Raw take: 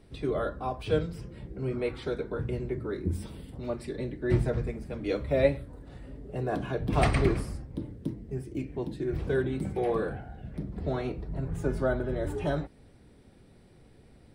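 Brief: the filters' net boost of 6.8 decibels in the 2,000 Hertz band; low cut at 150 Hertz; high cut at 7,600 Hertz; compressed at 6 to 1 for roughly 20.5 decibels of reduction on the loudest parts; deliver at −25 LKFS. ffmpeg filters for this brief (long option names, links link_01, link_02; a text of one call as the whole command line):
ffmpeg -i in.wav -af "highpass=150,lowpass=7600,equalizer=frequency=2000:width_type=o:gain=8.5,acompressor=threshold=-40dB:ratio=6,volume=19dB" out.wav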